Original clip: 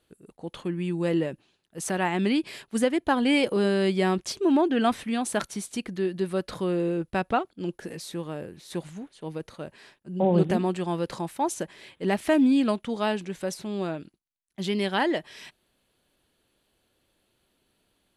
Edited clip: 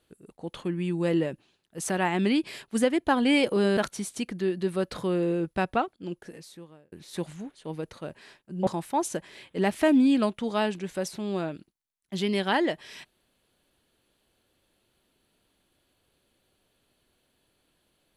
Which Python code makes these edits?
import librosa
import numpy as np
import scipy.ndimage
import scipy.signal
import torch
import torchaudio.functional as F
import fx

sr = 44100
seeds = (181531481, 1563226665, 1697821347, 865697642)

y = fx.edit(x, sr, fx.cut(start_s=3.77, length_s=1.57),
    fx.fade_out_span(start_s=7.19, length_s=1.3),
    fx.cut(start_s=10.24, length_s=0.89), tone=tone)